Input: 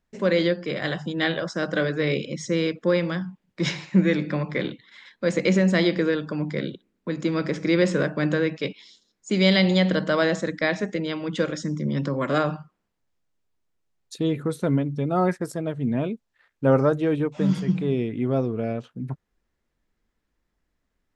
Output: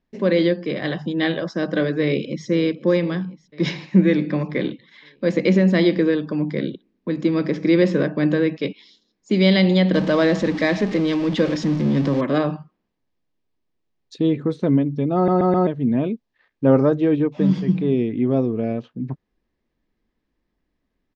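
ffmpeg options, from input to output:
ffmpeg -i in.wav -filter_complex "[0:a]asplit=2[link_01][link_02];[link_02]afade=type=in:start_time=2.02:duration=0.01,afade=type=out:start_time=2.47:duration=0.01,aecho=0:1:500|1000|1500|2000|2500|3000|3500:0.141254|0.0918149|0.0596797|0.0387918|0.0252147|0.0163895|0.0106532[link_03];[link_01][link_03]amix=inputs=2:normalize=0,asettb=1/sr,asplit=3[link_04][link_05][link_06];[link_04]atrim=end=9.944[link_07];[link_05]atrim=start=9.94:end=12.21,asetpts=PTS-STARTPTS,afade=type=in:duration=0.004:curve=qsin,afade=type=out:start_time=2.266:duration=0.004:curve=qsin,aeval=exprs='val(0)+0.5*0.0447*sgn(val(0))':channel_layout=same[link_08];[link_06]atrim=start=12.206[link_09];[link_07][link_08]acrossfade=duration=0.004:curve1=hsin:curve2=qsin[link_10];[link_10][link_09]acrossfade=duration=0.004:curve1=qsin:curve2=hsin,asplit=5[link_11][link_12][link_13][link_14][link_15];[link_11]atrim=end=15.282[link_16];[link_12]atrim=start=15.148:end=15.282[link_17];[link_13]atrim=start=15.148:end=15.282[link_18];[link_14]atrim=start=15.148:end=15.282[link_19];[link_15]atrim=start=15.668[link_20];[link_16][link_17]acrossfade=duration=0.004:curve1=hsin:curve2=hsin[link_21];[link_21][link_18]acrossfade=duration=0.004:curve1=hsin:curve2=hsin[link_22];[link_22][link_19]acrossfade=duration=0.004:curve1=hsin:curve2=hsin[link_23];[link_23][link_20]acrossfade=duration=0.004:curve1=hsin:curve2=hsin,lowpass=frequency=5400:width=0.5412,lowpass=frequency=5400:width=1.3066,equalizer=frequency=280:width=1:gain=6.5,bandreject=frequency=1400:width=8.7" out.wav

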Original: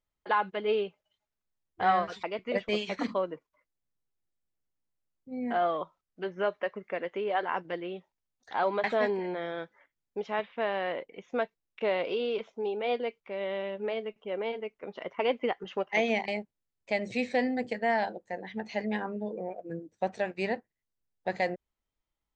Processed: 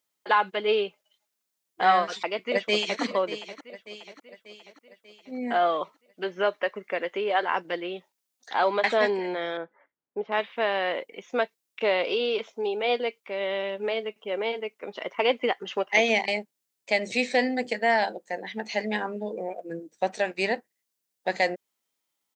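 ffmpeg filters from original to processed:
ffmpeg -i in.wav -filter_complex "[0:a]asplit=2[link_01][link_02];[link_02]afade=type=in:start_time=2.19:duration=0.01,afade=type=out:start_time=3.01:duration=0.01,aecho=0:1:590|1180|1770|2360|2950|3540:0.237137|0.130426|0.0717341|0.0394537|0.0216996|0.0119348[link_03];[link_01][link_03]amix=inputs=2:normalize=0,asettb=1/sr,asplit=3[link_04][link_05][link_06];[link_04]atrim=end=9.574[link_07];[link_05]atrim=start=9.57:end=10.32,asetpts=PTS-STARTPTS,afade=type=in:duration=0.004:curve=qsin,afade=type=out:start_time=0.746:duration=0.004:curve=qsin,lowpass=1200[link_08];[link_06]atrim=start=10.316[link_09];[link_07][link_08]acrossfade=duration=0.004:curve1=hsin:curve2=qsin[link_10];[link_10][link_09]acrossfade=duration=0.004:curve1=qsin:curve2=hsin,highpass=230,highshelf=frequency=3200:gain=11,volume=4dB" out.wav

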